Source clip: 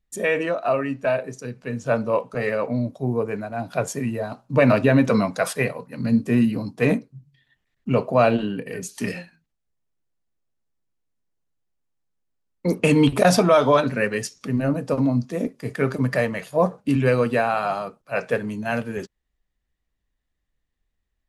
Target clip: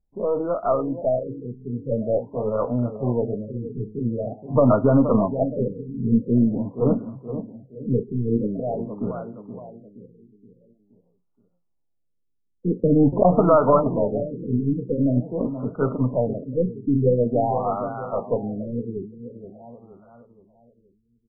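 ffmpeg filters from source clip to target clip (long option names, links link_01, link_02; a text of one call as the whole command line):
ffmpeg -i in.wav -filter_complex "[0:a]asplit=2[link_01][link_02];[link_02]adelay=473,lowpass=frequency=4100:poles=1,volume=-10.5dB,asplit=2[link_03][link_04];[link_04]adelay=473,lowpass=frequency=4100:poles=1,volume=0.46,asplit=2[link_05][link_06];[link_06]adelay=473,lowpass=frequency=4100:poles=1,volume=0.46,asplit=2[link_07][link_08];[link_08]adelay=473,lowpass=frequency=4100:poles=1,volume=0.46,asplit=2[link_09][link_10];[link_10]adelay=473,lowpass=frequency=4100:poles=1,volume=0.46[link_11];[link_01][link_03][link_05][link_07][link_09][link_11]amix=inputs=6:normalize=0,aeval=exprs='0.596*(cos(1*acos(clip(val(0)/0.596,-1,1)))-cos(1*PI/2))+0.0299*(cos(6*acos(clip(val(0)/0.596,-1,1)))-cos(6*PI/2))':channel_layout=same,afftfilt=real='re*lt(b*sr/1024,460*pow(1500/460,0.5+0.5*sin(2*PI*0.46*pts/sr)))':imag='im*lt(b*sr/1024,460*pow(1500/460,0.5+0.5*sin(2*PI*0.46*pts/sr)))':win_size=1024:overlap=0.75" out.wav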